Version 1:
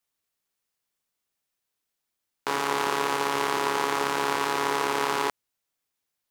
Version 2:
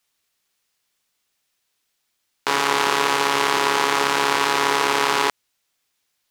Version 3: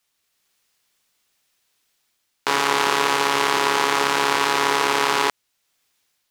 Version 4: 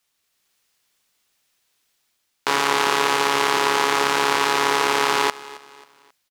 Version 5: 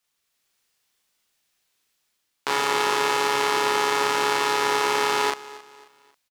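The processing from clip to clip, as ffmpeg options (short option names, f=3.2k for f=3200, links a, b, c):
-filter_complex "[0:a]equalizer=f=3.6k:w=0.41:g=6,asplit=2[a][b];[b]alimiter=limit=-13.5dB:level=0:latency=1:release=80,volume=-1dB[c];[a][c]amix=inputs=2:normalize=0,volume=1dB"
-af "dynaudnorm=f=130:g=5:m=4dB"
-af "aecho=1:1:269|538|807:0.112|0.0449|0.018"
-filter_complex "[0:a]asplit=2[a][b];[b]adelay=38,volume=-3dB[c];[a][c]amix=inputs=2:normalize=0,volume=-5dB"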